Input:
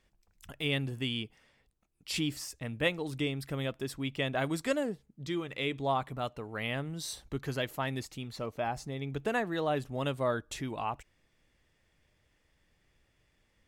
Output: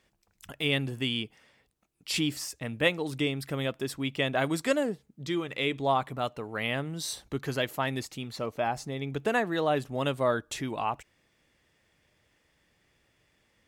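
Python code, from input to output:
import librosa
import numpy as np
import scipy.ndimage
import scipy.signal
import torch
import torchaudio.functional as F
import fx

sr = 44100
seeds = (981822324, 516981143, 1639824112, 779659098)

y = fx.highpass(x, sr, hz=130.0, slope=6)
y = y * librosa.db_to_amplitude(4.5)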